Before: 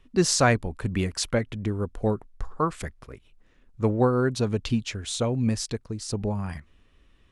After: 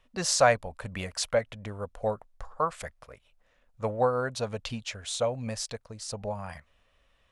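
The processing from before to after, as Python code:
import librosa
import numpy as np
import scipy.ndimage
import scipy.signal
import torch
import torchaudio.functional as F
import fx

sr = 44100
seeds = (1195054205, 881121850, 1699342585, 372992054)

y = fx.low_shelf_res(x, sr, hz=450.0, db=-7.5, q=3.0)
y = F.gain(torch.from_numpy(y), -2.5).numpy()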